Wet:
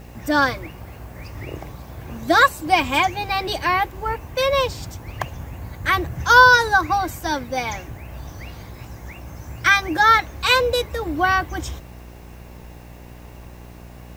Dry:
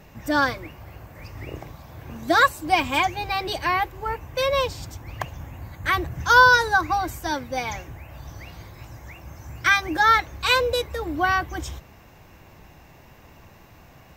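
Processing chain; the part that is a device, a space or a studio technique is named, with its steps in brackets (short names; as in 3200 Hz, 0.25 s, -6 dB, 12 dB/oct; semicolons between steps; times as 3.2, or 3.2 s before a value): video cassette with head-switching buzz (buzz 60 Hz, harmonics 15, -44 dBFS -6 dB/oct; white noise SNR 37 dB); gain +3 dB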